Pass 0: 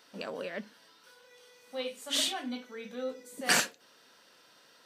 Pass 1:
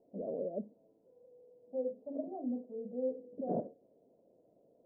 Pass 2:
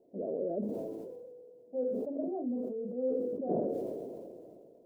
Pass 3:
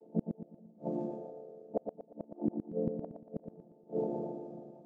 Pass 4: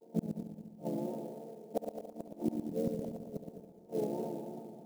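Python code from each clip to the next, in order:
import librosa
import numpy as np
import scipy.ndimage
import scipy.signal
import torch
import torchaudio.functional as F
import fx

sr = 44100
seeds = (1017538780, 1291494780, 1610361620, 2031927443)

y1 = scipy.signal.sosfilt(scipy.signal.cheby1(5, 1.0, 670.0, 'lowpass', fs=sr, output='sos'), x)
y1 = y1 * librosa.db_to_amplitude(2.0)
y2 = fx.peak_eq(y1, sr, hz=370.0, db=8.0, octaves=0.51)
y2 = fx.sustainer(y2, sr, db_per_s=24.0)
y3 = fx.chord_vocoder(y2, sr, chord='minor triad', root=50)
y3 = fx.gate_flip(y3, sr, shuts_db=-28.0, range_db=-34)
y3 = fx.echo_feedback(y3, sr, ms=117, feedback_pct=39, wet_db=-6)
y3 = y3 * librosa.db_to_amplitude(8.5)
y4 = fx.vibrato(y3, sr, rate_hz=2.9, depth_cents=74.0)
y4 = fx.echo_heads(y4, sr, ms=70, heads='first and third', feedback_pct=56, wet_db=-11)
y4 = fx.clock_jitter(y4, sr, seeds[0], jitter_ms=0.023)
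y4 = y4 * librosa.db_to_amplitude(-1.0)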